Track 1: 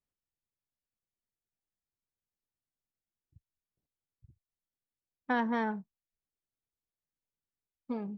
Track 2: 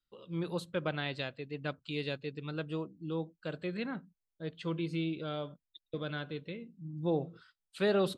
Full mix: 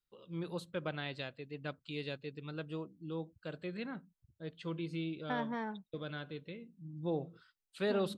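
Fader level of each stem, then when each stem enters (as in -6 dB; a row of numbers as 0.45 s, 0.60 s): -7.5 dB, -4.5 dB; 0.00 s, 0.00 s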